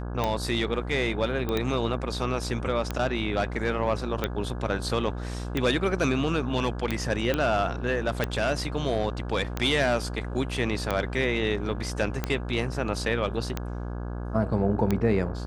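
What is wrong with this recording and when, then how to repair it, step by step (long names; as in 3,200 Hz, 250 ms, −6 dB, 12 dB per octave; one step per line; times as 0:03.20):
mains buzz 60 Hz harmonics 28 −33 dBFS
scratch tick 45 rpm −12 dBFS
0:01.49: click −16 dBFS
0:07.34: click −12 dBFS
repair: click removal
hum removal 60 Hz, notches 28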